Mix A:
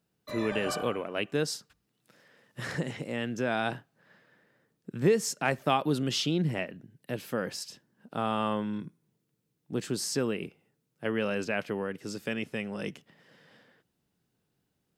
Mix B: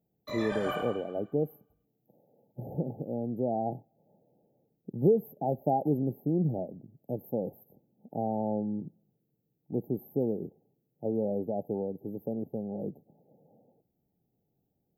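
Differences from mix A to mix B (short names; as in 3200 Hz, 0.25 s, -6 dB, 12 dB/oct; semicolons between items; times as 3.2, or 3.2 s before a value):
speech: add brick-wall FIR band-stop 880–12000 Hz; reverb: on, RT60 1.1 s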